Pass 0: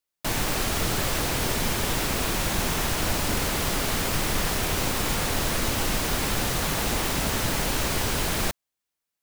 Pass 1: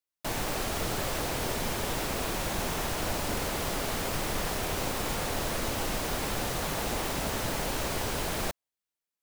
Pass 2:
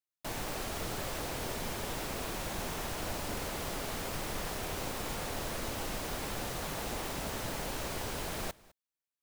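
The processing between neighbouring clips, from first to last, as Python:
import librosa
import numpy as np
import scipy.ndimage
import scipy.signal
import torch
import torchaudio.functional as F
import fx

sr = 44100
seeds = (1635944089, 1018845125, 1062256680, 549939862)

y1 = fx.dynamic_eq(x, sr, hz=610.0, q=0.82, threshold_db=-46.0, ratio=4.0, max_db=5)
y1 = F.gain(torch.from_numpy(y1), -7.0).numpy()
y2 = y1 + 10.0 ** (-23.0 / 20.0) * np.pad(y1, (int(206 * sr / 1000.0), 0))[:len(y1)]
y2 = F.gain(torch.from_numpy(y2), -6.0).numpy()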